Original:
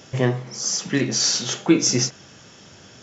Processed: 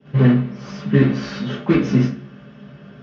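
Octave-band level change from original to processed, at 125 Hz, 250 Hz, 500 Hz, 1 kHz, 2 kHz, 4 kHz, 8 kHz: +9.0 dB, +5.5 dB, +2.5 dB, +2.0 dB, +0.5 dB, -13.0 dB, n/a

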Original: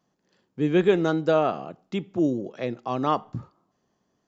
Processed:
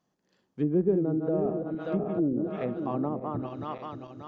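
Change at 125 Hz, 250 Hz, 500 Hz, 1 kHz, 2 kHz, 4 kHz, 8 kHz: -1.5 dB, -2.0 dB, -4.5 dB, -8.5 dB, -15.0 dB, under -15 dB, n/a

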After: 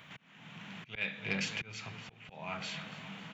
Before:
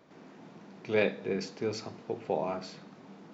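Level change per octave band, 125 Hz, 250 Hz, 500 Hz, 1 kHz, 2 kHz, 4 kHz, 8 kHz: -2.5 dB, -7.0 dB, -17.0 dB, -7.0 dB, +1.5 dB, +3.5 dB, n/a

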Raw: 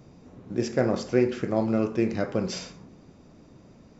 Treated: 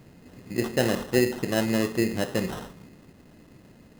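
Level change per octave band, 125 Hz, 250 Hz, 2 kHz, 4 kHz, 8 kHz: 0.0 dB, 0.0 dB, +6.0 dB, +5.5 dB, n/a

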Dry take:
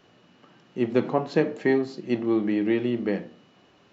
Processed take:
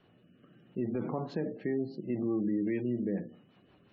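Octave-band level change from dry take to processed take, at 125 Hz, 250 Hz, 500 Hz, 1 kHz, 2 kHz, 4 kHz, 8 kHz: -4.5 dB, -7.0 dB, -10.5 dB, -12.5 dB, -15.0 dB, under -15 dB, n/a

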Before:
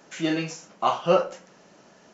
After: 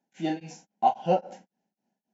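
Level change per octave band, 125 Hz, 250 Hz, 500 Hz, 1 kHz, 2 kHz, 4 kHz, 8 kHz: -3.0 dB, -4.0 dB, -5.5 dB, +1.0 dB, -11.0 dB, -10.5 dB, n/a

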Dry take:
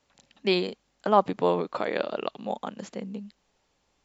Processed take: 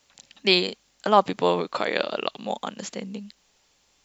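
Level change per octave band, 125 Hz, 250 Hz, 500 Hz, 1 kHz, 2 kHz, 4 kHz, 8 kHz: +1.0 dB, +1.0 dB, +1.5 dB, +3.0 dB, +7.0 dB, +10.0 dB, n/a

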